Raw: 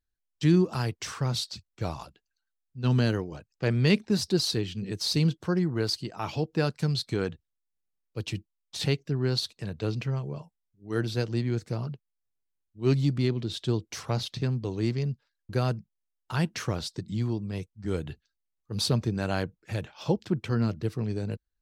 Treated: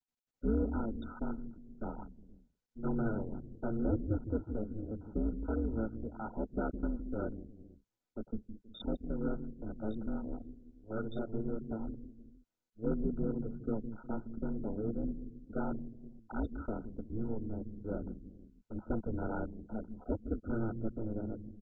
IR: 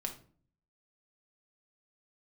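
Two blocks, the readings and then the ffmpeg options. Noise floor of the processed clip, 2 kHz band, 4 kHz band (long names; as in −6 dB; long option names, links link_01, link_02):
below −85 dBFS, −14.5 dB, −29.0 dB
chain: -filter_complex "[0:a]acrossover=split=260|3000[link_01][link_02][link_03];[link_01]acompressor=threshold=-28dB:ratio=2[link_04];[link_04][link_02][link_03]amix=inputs=3:normalize=0,aeval=exprs='val(0)*sin(2*PI*110*n/s)':channel_layout=same,anlmdn=0.0398,acrossover=split=330|1100[link_05][link_06][link_07];[link_05]aecho=1:1:162|205|362|476:0.501|0.126|0.168|0.15[link_08];[link_06]asoftclip=type=tanh:threshold=-32.5dB[link_09];[link_07]asplit=2[link_10][link_11];[link_11]adelay=14,volume=-3.5dB[link_12];[link_10][link_12]amix=inputs=2:normalize=0[link_13];[link_08][link_09][link_13]amix=inputs=3:normalize=0,volume=-3.5dB" -ar 16000 -c:a mp2 -b:a 8k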